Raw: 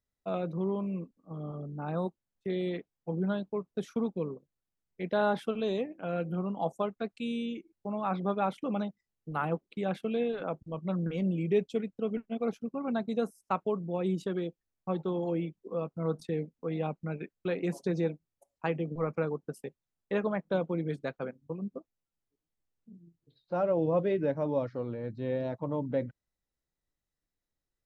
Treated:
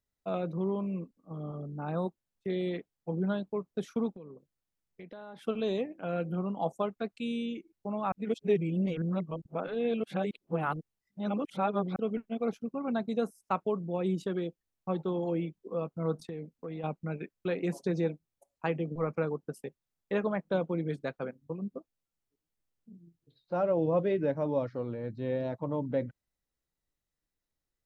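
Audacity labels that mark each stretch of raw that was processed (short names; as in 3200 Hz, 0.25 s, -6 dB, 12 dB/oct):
4.160000	5.470000	compressor, threshold -44 dBFS
8.120000	11.960000	reverse
16.230000	16.840000	compressor, threshold -35 dBFS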